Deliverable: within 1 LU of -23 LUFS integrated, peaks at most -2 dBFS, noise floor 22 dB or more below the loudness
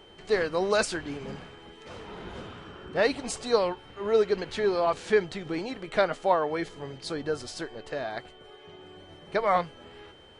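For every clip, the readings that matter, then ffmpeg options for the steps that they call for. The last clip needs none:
steady tone 3100 Hz; tone level -55 dBFS; loudness -28.5 LUFS; peak -11.0 dBFS; loudness target -23.0 LUFS
-> -af "bandreject=f=3.1k:w=30"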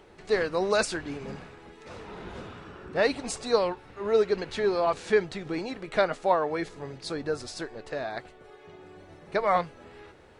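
steady tone none; loudness -28.5 LUFS; peak -11.0 dBFS; loudness target -23.0 LUFS
-> -af "volume=5.5dB"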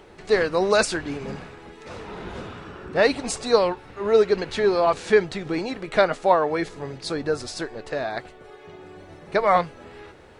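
loudness -23.0 LUFS; peak -5.5 dBFS; noise floor -47 dBFS

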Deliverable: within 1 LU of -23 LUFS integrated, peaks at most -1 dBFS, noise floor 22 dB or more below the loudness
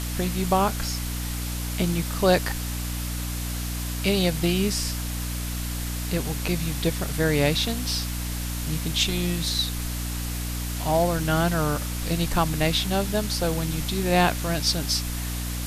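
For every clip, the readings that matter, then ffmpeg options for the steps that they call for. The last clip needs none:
hum 60 Hz; harmonics up to 300 Hz; hum level -28 dBFS; noise floor -30 dBFS; noise floor target -48 dBFS; loudness -25.5 LUFS; peak -6.5 dBFS; loudness target -23.0 LUFS
-> -af "bandreject=f=60:t=h:w=4,bandreject=f=120:t=h:w=4,bandreject=f=180:t=h:w=4,bandreject=f=240:t=h:w=4,bandreject=f=300:t=h:w=4"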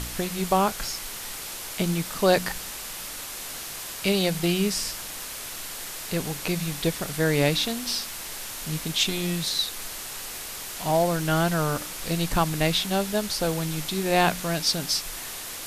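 hum none; noise floor -36 dBFS; noise floor target -49 dBFS
-> -af "afftdn=nr=13:nf=-36"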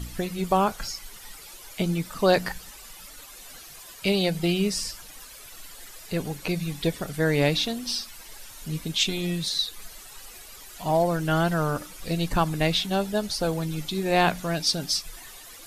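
noise floor -45 dBFS; noise floor target -48 dBFS
-> -af "afftdn=nr=6:nf=-45"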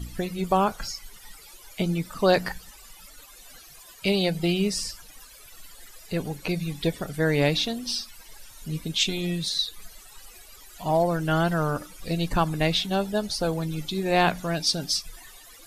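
noise floor -49 dBFS; loudness -26.0 LUFS; peak -7.5 dBFS; loudness target -23.0 LUFS
-> -af "volume=3dB"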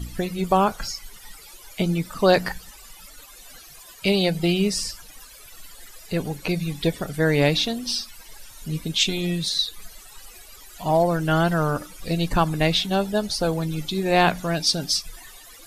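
loudness -23.0 LUFS; peak -4.5 dBFS; noise floor -46 dBFS

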